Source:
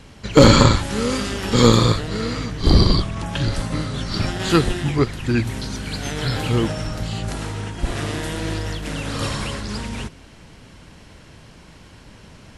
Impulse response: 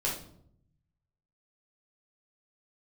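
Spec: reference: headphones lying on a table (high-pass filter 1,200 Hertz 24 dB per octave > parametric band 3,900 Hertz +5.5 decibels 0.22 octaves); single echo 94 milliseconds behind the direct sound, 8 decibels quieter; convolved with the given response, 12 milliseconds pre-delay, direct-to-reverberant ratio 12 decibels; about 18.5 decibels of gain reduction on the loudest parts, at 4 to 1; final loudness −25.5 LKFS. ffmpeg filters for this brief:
-filter_complex "[0:a]acompressor=threshold=-30dB:ratio=4,aecho=1:1:94:0.398,asplit=2[link_01][link_02];[1:a]atrim=start_sample=2205,adelay=12[link_03];[link_02][link_03]afir=irnorm=-1:irlink=0,volume=-18dB[link_04];[link_01][link_04]amix=inputs=2:normalize=0,highpass=frequency=1200:width=0.5412,highpass=frequency=1200:width=1.3066,equalizer=frequency=3900:width_type=o:width=0.22:gain=5.5,volume=11dB"

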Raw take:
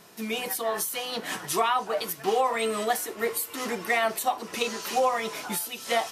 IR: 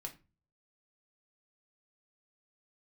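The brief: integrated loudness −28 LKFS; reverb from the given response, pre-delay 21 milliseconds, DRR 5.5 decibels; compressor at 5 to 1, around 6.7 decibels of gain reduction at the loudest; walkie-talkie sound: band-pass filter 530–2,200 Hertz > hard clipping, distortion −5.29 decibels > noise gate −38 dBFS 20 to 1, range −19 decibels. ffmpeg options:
-filter_complex "[0:a]acompressor=threshold=-27dB:ratio=5,asplit=2[link_01][link_02];[1:a]atrim=start_sample=2205,adelay=21[link_03];[link_02][link_03]afir=irnorm=-1:irlink=0,volume=-2.5dB[link_04];[link_01][link_04]amix=inputs=2:normalize=0,highpass=530,lowpass=2200,asoftclip=type=hard:threshold=-36.5dB,agate=range=-19dB:threshold=-38dB:ratio=20,volume=16.5dB"

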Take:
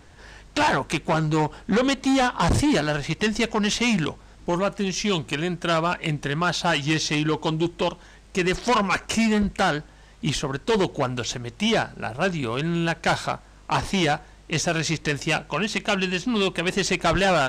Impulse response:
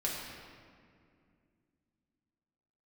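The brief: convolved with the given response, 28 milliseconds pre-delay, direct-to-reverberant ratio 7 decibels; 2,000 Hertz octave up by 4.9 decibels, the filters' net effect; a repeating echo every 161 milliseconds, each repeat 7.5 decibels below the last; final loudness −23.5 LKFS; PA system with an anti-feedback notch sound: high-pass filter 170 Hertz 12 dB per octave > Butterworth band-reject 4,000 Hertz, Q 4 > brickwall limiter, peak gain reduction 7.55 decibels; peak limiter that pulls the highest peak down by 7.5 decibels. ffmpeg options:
-filter_complex "[0:a]equalizer=frequency=2000:width_type=o:gain=6.5,alimiter=limit=-16.5dB:level=0:latency=1,aecho=1:1:161|322|483|644|805:0.422|0.177|0.0744|0.0312|0.0131,asplit=2[link_01][link_02];[1:a]atrim=start_sample=2205,adelay=28[link_03];[link_02][link_03]afir=irnorm=-1:irlink=0,volume=-12dB[link_04];[link_01][link_04]amix=inputs=2:normalize=0,highpass=170,asuperstop=centerf=4000:order=8:qfactor=4,volume=4dB,alimiter=limit=-13.5dB:level=0:latency=1"

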